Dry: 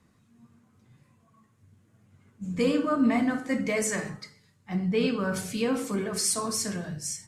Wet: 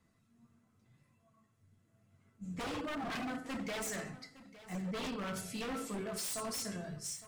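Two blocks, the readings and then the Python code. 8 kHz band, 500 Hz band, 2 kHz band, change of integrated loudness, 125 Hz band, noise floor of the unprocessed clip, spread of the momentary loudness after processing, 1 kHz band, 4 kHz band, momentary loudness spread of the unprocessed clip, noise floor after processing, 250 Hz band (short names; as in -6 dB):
-11.0 dB, -13.5 dB, -9.5 dB, -12.0 dB, -11.0 dB, -65 dBFS, 9 LU, -8.0 dB, -8.0 dB, 11 LU, -73 dBFS, -14.0 dB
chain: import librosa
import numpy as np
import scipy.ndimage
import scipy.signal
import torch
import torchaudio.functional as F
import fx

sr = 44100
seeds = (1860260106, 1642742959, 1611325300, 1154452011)

p1 = fx.comb_fb(x, sr, f0_hz=670.0, decay_s=0.17, harmonics='all', damping=0.0, mix_pct=80)
p2 = 10.0 ** (-37.5 / 20.0) * (np.abs((p1 / 10.0 ** (-37.5 / 20.0) + 3.0) % 4.0 - 2.0) - 1.0)
p3 = p2 + fx.echo_single(p2, sr, ms=860, db=-17.0, dry=0)
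y = p3 * 10.0 ** (3.5 / 20.0)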